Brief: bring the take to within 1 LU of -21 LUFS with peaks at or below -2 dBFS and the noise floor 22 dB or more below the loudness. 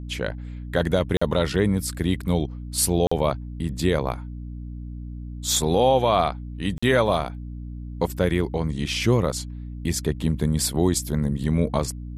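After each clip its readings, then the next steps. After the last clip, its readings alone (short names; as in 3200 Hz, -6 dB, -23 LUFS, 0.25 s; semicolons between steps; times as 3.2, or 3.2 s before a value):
dropouts 3; longest dropout 45 ms; hum 60 Hz; harmonics up to 300 Hz; hum level -31 dBFS; loudness -23.5 LUFS; peak -7.5 dBFS; loudness target -21.0 LUFS
-> interpolate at 1.17/3.07/6.78, 45 ms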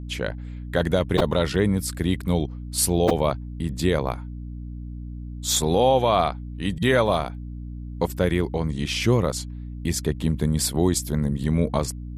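dropouts 0; hum 60 Hz; harmonics up to 300 Hz; hum level -31 dBFS
-> notches 60/120/180/240/300 Hz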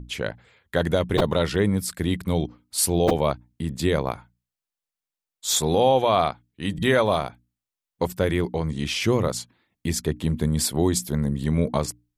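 hum none; loudness -24.0 LUFS; peak -7.5 dBFS; loudness target -21.0 LUFS
-> gain +3 dB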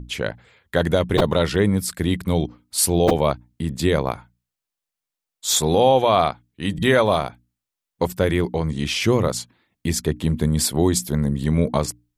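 loudness -21.0 LUFS; peak -4.5 dBFS; noise floor -86 dBFS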